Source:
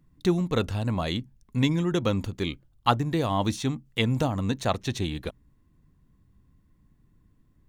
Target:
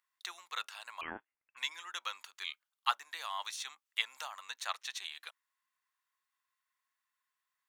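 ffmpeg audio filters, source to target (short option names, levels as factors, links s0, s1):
-filter_complex "[0:a]highpass=f=1100:w=0.5412,highpass=f=1100:w=1.3066,asettb=1/sr,asplit=3[s0][s1][s2];[s0]atrim=end=1.014[s3];[s1]atrim=start=1.01:end=1.57,asetpts=PTS-STARTPTS,afade=t=in:d=0.004:c=qsin,afade=t=out:st=0.556:d=0.004:c=qsin,lowpass=f=3100:t=q:w=0.5098,lowpass=f=3100:t=q:w=0.6013,lowpass=f=3100:t=q:w=0.9,lowpass=f=3100:t=q:w=2.563,afreqshift=-3700[s4];[s2]atrim=start=1.566[s5];[s3][s4]acrossfade=d=0.004:c1=hsin:c2=qsin[s6];[s6][s5]acrossfade=d=0.004:c1=qsin:c2=hsin,volume=0.596"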